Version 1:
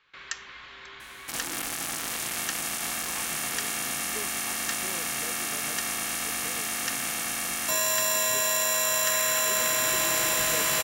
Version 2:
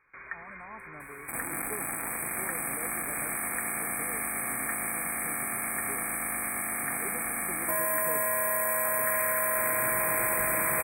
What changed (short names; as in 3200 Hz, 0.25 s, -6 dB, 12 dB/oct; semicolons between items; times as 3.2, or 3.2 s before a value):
speech: entry -2.45 s; master: add brick-wall FIR band-stop 2500–7800 Hz